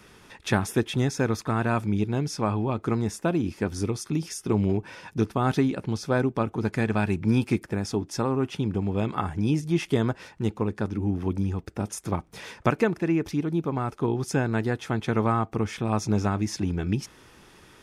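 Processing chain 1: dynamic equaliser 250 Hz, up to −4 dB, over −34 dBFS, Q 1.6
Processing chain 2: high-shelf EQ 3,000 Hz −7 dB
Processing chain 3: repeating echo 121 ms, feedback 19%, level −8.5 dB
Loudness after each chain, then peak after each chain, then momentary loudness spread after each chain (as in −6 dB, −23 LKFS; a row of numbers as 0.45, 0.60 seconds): −28.5, −27.5, −26.5 LKFS; −8.5, −8.5, −8.0 dBFS; 5, 6, 5 LU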